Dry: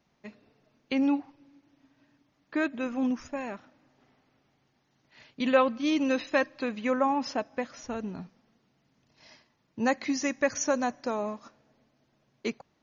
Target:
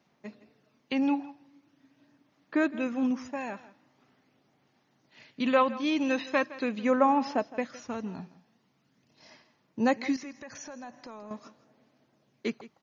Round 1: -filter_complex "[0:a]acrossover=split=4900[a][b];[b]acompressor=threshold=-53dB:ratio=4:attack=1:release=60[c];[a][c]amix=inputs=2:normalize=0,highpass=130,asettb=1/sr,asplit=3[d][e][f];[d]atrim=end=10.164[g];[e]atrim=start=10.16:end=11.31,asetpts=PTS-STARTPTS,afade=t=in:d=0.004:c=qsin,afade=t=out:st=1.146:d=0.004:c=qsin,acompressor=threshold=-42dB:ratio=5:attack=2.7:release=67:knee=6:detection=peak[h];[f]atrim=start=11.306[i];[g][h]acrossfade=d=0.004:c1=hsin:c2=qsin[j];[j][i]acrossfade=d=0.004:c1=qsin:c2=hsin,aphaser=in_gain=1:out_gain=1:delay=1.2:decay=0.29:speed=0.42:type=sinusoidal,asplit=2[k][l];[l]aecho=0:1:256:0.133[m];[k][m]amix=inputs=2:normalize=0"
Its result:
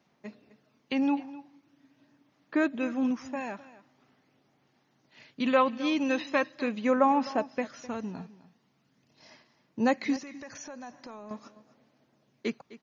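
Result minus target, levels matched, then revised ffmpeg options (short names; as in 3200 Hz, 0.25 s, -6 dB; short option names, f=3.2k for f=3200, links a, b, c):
echo 93 ms late
-filter_complex "[0:a]acrossover=split=4900[a][b];[b]acompressor=threshold=-53dB:ratio=4:attack=1:release=60[c];[a][c]amix=inputs=2:normalize=0,highpass=130,asettb=1/sr,asplit=3[d][e][f];[d]atrim=end=10.164[g];[e]atrim=start=10.16:end=11.31,asetpts=PTS-STARTPTS,afade=t=in:d=0.004:c=qsin,afade=t=out:st=1.146:d=0.004:c=qsin,acompressor=threshold=-42dB:ratio=5:attack=2.7:release=67:knee=6:detection=peak[h];[f]atrim=start=11.306[i];[g][h]acrossfade=d=0.004:c1=hsin:c2=qsin[j];[j][i]acrossfade=d=0.004:c1=qsin:c2=hsin,aphaser=in_gain=1:out_gain=1:delay=1.2:decay=0.29:speed=0.42:type=sinusoidal,asplit=2[k][l];[l]aecho=0:1:163:0.133[m];[k][m]amix=inputs=2:normalize=0"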